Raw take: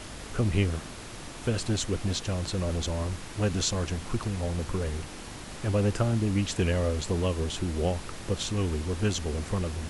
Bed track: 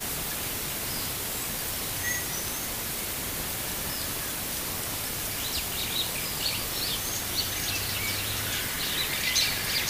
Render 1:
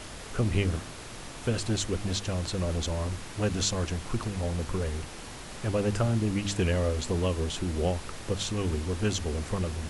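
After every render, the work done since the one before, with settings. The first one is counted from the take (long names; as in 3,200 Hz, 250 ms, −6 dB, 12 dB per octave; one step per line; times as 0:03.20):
hum removal 50 Hz, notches 7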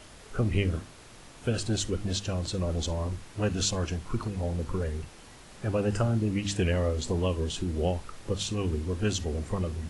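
noise reduction from a noise print 8 dB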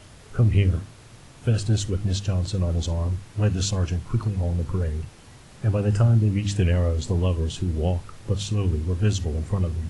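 parametric band 110 Hz +10.5 dB 1.2 octaves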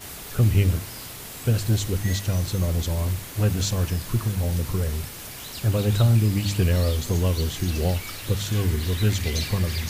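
mix in bed track −6.5 dB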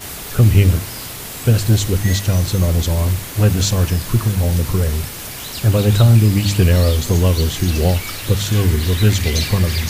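level +8 dB
brickwall limiter −2 dBFS, peak gain reduction 1 dB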